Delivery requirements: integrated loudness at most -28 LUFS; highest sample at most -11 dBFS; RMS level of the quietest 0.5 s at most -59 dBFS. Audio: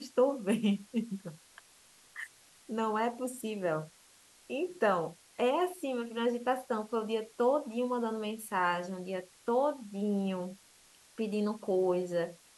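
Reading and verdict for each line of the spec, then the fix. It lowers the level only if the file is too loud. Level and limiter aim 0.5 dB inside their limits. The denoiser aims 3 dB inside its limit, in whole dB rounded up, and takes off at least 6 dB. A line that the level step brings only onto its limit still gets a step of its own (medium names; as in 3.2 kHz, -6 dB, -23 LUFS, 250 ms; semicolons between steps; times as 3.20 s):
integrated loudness -33.0 LUFS: pass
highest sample -17.5 dBFS: pass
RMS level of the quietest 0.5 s -61 dBFS: pass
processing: none needed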